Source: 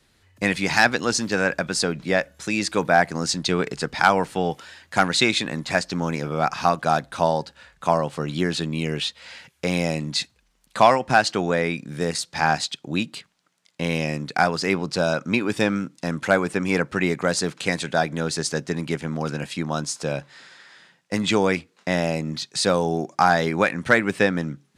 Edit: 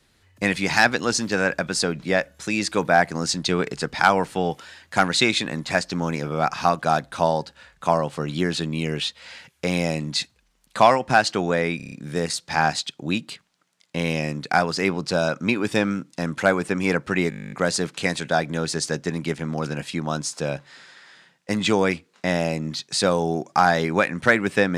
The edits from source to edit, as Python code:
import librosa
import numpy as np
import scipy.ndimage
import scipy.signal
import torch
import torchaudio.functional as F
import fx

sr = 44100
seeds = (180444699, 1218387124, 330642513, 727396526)

y = fx.edit(x, sr, fx.stutter(start_s=11.77, slice_s=0.03, count=6),
    fx.stutter(start_s=17.15, slice_s=0.02, count=12), tone=tone)